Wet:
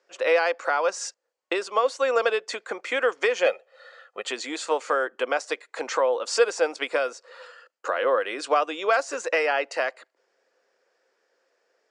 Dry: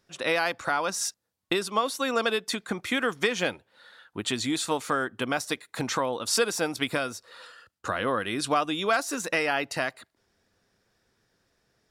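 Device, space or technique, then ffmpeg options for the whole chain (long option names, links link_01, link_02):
phone speaker on a table: -filter_complex "[0:a]lowpass=frequency=9600:width=0.5412,lowpass=frequency=9600:width=1.3066,highpass=frequency=390:width=0.5412,highpass=frequency=390:width=1.3066,equalizer=frequency=520:width_type=q:width=4:gain=8,equalizer=frequency=3700:width_type=q:width=4:gain=-9,equalizer=frequency=5600:width_type=q:width=4:gain=-5,lowpass=frequency=7200:width=0.5412,lowpass=frequency=7200:width=1.3066,asettb=1/sr,asplit=3[link_01][link_02][link_03];[link_01]atrim=end=3.464[link_04];[link_02]atrim=start=3.46:end=4.25,asetpts=PTS-STARTPTS,afade=type=in:duration=0.004:curve=qsin,afade=type=out:start_time=0.786:duration=0.004:curve=qsin,aecho=1:1:1.6:0.92,atrim=end_sample=34839[link_05];[link_03]atrim=start=4.246[link_06];[link_04][link_05]acrossfade=duration=0.004:curve1=hsin:curve2=qsin[link_07];[link_07][link_06]acrossfade=duration=0.004:curve1=qsin:curve2=hsin,volume=2dB"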